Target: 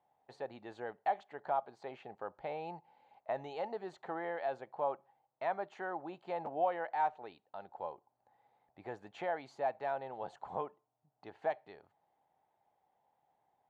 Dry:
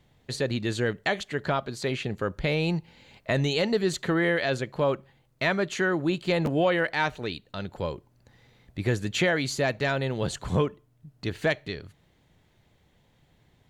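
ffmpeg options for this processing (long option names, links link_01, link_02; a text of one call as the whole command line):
ffmpeg -i in.wav -af "bandpass=frequency=800:width_type=q:width=6.6:csg=0,volume=2.5dB" out.wav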